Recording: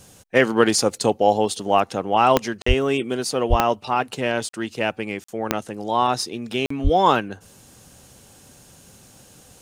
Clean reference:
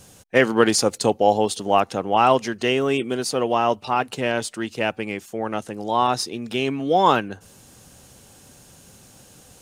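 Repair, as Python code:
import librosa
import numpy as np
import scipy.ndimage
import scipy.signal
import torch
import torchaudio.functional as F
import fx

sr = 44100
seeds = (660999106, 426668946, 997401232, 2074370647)

y = fx.fix_declick_ar(x, sr, threshold=10.0)
y = fx.fix_deplosive(y, sr, at_s=(2.67, 3.49, 6.83))
y = fx.fix_interpolate(y, sr, at_s=(2.62, 4.49, 5.24, 6.66), length_ms=44.0)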